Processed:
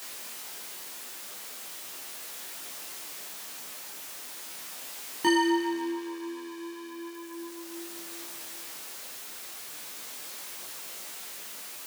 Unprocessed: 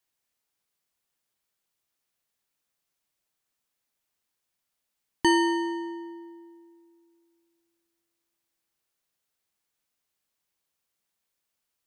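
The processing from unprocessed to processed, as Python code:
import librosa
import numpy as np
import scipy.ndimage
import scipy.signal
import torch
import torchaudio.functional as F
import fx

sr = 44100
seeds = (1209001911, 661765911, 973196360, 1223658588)

p1 = x + 0.5 * 10.0 ** (-33.0 / 20.0) * np.sign(x)
p2 = scipy.signal.sosfilt(scipy.signal.butter(2, 230.0, 'highpass', fs=sr, output='sos'), p1)
p3 = np.clip(p2, -10.0 ** (-24.0 / 20.0), 10.0 ** (-24.0 / 20.0))
p4 = p2 + (p3 * 10.0 ** (-10.0 / 20.0))
y = fx.detune_double(p4, sr, cents=13)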